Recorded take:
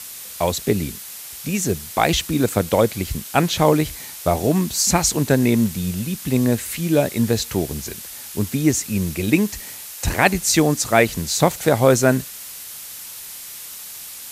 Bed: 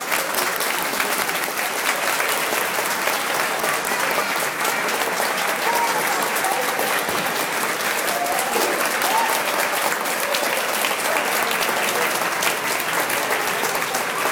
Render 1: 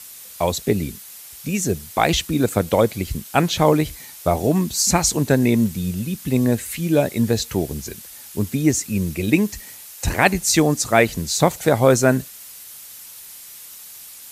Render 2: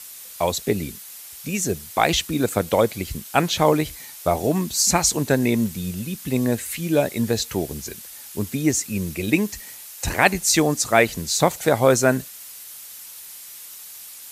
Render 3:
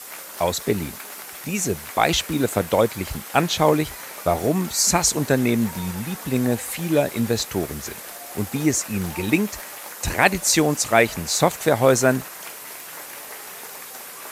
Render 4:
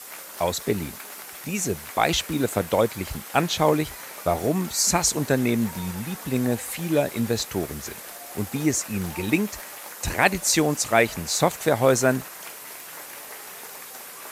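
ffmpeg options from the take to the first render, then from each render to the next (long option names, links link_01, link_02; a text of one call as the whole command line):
ffmpeg -i in.wav -af "afftdn=noise_reduction=6:noise_floor=-36" out.wav
ffmpeg -i in.wav -af "lowshelf=frequency=310:gain=-5.5" out.wav
ffmpeg -i in.wav -i bed.wav -filter_complex "[1:a]volume=-18.5dB[link_01];[0:a][link_01]amix=inputs=2:normalize=0" out.wav
ffmpeg -i in.wav -af "volume=-2.5dB" out.wav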